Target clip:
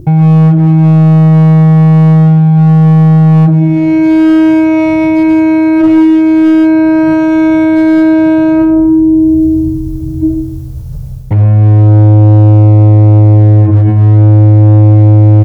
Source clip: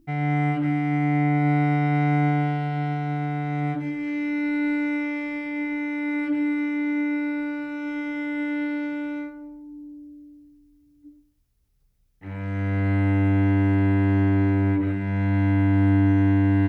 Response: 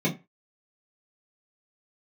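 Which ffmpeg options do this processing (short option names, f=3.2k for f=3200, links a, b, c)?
-filter_complex "[0:a]equalizer=f=125:t=o:w=1:g=11,equalizer=f=250:t=o:w=1:g=-8,equalizer=f=500:t=o:w=1:g=7,equalizer=f=2k:t=o:w=1:g=-6,asplit=2[a][b];[b]adelay=149,lowpass=f=2.2k:p=1,volume=-11dB,asplit=2[c][d];[d]adelay=149,lowpass=f=2.2k:p=1,volume=0.28,asplit=2[e][f];[f]adelay=149,lowpass=f=2.2k:p=1,volume=0.28[g];[a][c][e][g]amix=inputs=4:normalize=0,asplit=2[h][i];[i]adynamicsmooth=sensitivity=0.5:basefreq=1.2k,volume=2dB[j];[h][j]amix=inputs=2:normalize=0,equalizer=f=83:t=o:w=0.76:g=9.5,asplit=2[k][l];[1:a]atrim=start_sample=2205,lowshelf=f=140:g=-9.5[m];[l][m]afir=irnorm=-1:irlink=0,volume=-29dB[n];[k][n]amix=inputs=2:normalize=0,asetrate=47628,aresample=44100,dynaudnorm=f=150:g=3:m=14dB,asoftclip=type=hard:threshold=-5dB,alimiter=level_in=20.5dB:limit=-1dB:release=50:level=0:latency=1,volume=-1dB"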